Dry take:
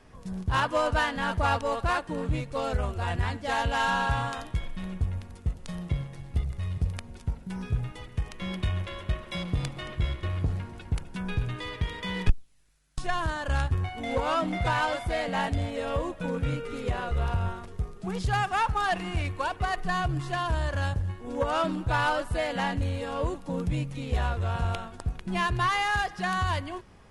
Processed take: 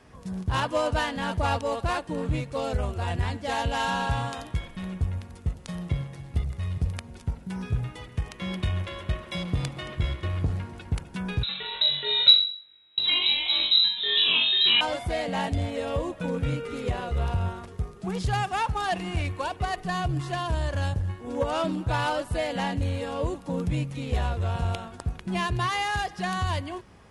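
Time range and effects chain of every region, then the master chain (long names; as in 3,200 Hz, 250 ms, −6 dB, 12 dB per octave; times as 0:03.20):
0:11.43–0:14.81: voice inversion scrambler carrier 3,900 Hz + flutter between parallel walls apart 3.7 metres, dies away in 0.46 s
whole clip: high-pass filter 50 Hz; dynamic equaliser 1,400 Hz, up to −6 dB, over −41 dBFS, Q 1.2; level +2 dB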